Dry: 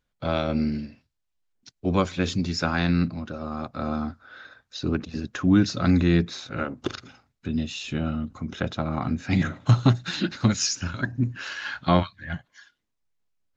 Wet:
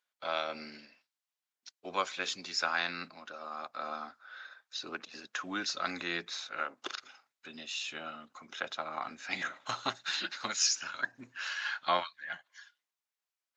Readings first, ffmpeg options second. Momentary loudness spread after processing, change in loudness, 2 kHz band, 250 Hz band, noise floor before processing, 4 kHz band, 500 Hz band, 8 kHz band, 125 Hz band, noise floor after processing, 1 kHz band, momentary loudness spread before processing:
15 LU, −10.0 dB, −3.0 dB, −23.5 dB, −78 dBFS, −2.5 dB, −11.5 dB, can't be measured, −33.5 dB, below −85 dBFS, −4.5 dB, 14 LU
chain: -af "highpass=850,volume=-2.5dB"

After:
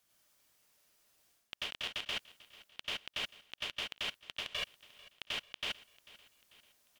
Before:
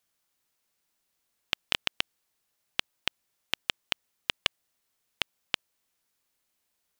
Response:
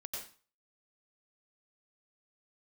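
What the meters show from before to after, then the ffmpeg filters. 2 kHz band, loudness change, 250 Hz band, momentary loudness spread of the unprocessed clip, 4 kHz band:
−6.0 dB, −6.5 dB, −7.0 dB, 5 LU, −5.5 dB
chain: -filter_complex "[1:a]atrim=start_sample=2205,afade=type=out:start_time=0.22:duration=0.01,atrim=end_sample=10143[link_01];[0:a][link_01]afir=irnorm=-1:irlink=0,alimiter=limit=-19dB:level=0:latency=1:release=62,areverse,acompressor=threshold=-44dB:ratio=16,areverse,aecho=1:1:443|886|1329|1772:0.1|0.052|0.027|0.0141,volume=8.5dB" -ar 48000 -c:a aac -b:a 192k

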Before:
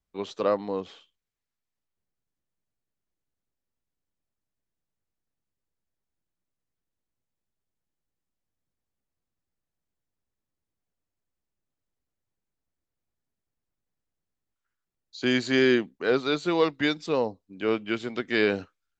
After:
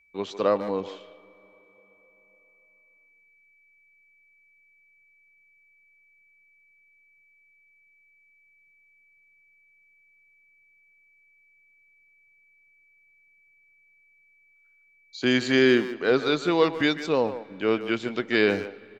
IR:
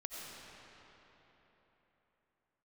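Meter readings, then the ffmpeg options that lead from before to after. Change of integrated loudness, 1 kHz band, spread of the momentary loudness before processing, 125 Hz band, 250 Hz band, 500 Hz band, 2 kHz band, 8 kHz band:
+2.0 dB, +2.5 dB, 11 LU, +2.0 dB, +2.0 dB, +2.0 dB, +2.5 dB, can't be measured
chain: -filter_complex "[0:a]asplit=2[link_01][link_02];[1:a]atrim=start_sample=2205[link_03];[link_02][link_03]afir=irnorm=-1:irlink=0,volume=-19.5dB[link_04];[link_01][link_04]amix=inputs=2:normalize=0,aeval=exprs='val(0)+0.000794*sin(2*PI*2300*n/s)':channel_layout=same,asplit=2[link_05][link_06];[link_06]adelay=150,highpass=300,lowpass=3400,asoftclip=type=hard:threshold=-18dB,volume=-11dB[link_07];[link_05][link_07]amix=inputs=2:normalize=0,volume=1.5dB"

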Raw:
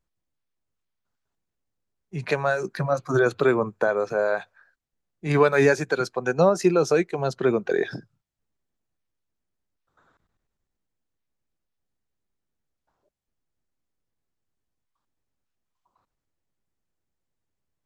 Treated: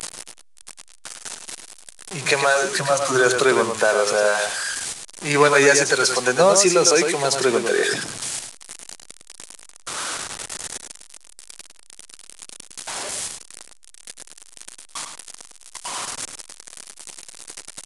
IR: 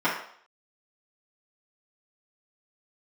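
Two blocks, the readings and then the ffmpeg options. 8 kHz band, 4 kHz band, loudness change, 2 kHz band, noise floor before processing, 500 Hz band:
+22.0 dB, +18.0 dB, +3.5 dB, +8.5 dB, −82 dBFS, +3.5 dB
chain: -filter_complex "[0:a]aeval=exprs='val(0)+0.5*0.0316*sgn(val(0))':channel_layout=same,aemphasis=mode=production:type=riaa,aresample=22050,aresample=44100,asplit=2[link_01][link_02];[link_02]adelay=105,volume=-6dB,highshelf=frequency=4000:gain=-2.36[link_03];[link_01][link_03]amix=inputs=2:normalize=0,volume=4.5dB"

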